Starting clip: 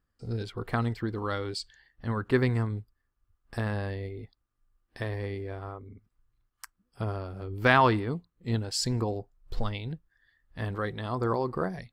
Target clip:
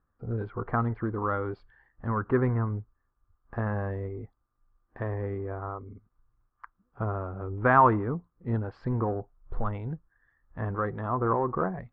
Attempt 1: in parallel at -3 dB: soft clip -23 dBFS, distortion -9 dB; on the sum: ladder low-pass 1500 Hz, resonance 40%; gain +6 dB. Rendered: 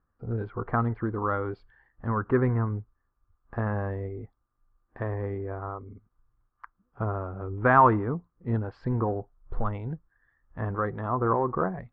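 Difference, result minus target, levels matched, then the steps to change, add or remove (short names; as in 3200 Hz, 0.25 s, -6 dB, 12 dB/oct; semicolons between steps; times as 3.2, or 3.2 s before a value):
soft clip: distortion -4 dB
change: soft clip -30.5 dBFS, distortion -5 dB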